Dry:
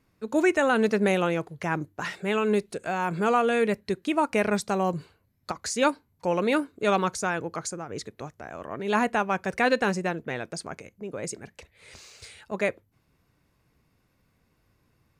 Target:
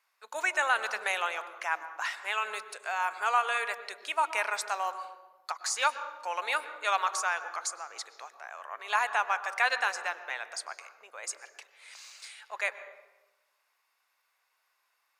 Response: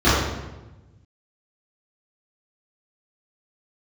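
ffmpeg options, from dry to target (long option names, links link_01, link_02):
-filter_complex "[0:a]highpass=frequency=820:width=0.5412,highpass=frequency=820:width=1.3066,asplit=2[link_01][link_02];[1:a]atrim=start_sample=2205,lowshelf=frequency=250:gain=6.5,adelay=97[link_03];[link_02][link_03]afir=irnorm=-1:irlink=0,volume=-36dB[link_04];[link_01][link_04]amix=inputs=2:normalize=0"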